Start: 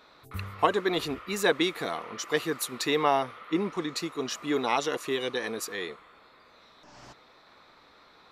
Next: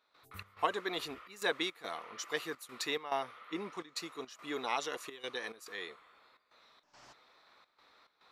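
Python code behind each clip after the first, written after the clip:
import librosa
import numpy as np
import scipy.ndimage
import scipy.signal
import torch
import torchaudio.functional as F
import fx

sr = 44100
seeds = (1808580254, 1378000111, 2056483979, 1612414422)

y = fx.low_shelf(x, sr, hz=400.0, db=-11.0)
y = fx.step_gate(y, sr, bpm=106, pattern='.xx.xxxxx', floor_db=-12.0, edge_ms=4.5)
y = y * librosa.db_to_amplitude(-6.0)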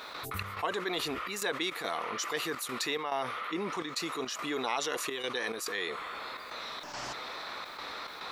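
y = fx.env_flatten(x, sr, amount_pct=70)
y = y * librosa.db_to_amplitude(-3.0)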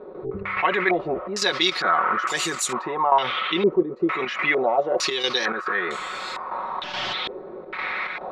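y = x + 0.64 * np.pad(x, (int(5.4 * sr / 1000.0), 0))[:len(x)]
y = fx.filter_held_lowpass(y, sr, hz=2.2, low_hz=420.0, high_hz=7500.0)
y = y * librosa.db_to_amplitude(7.0)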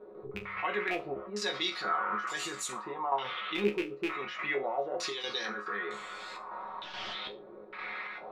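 y = fx.rattle_buzz(x, sr, strikes_db=-29.0, level_db=-12.0)
y = fx.resonator_bank(y, sr, root=37, chord='fifth', decay_s=0.24)
y = y * librosa.db_to_amplitude(-2.5)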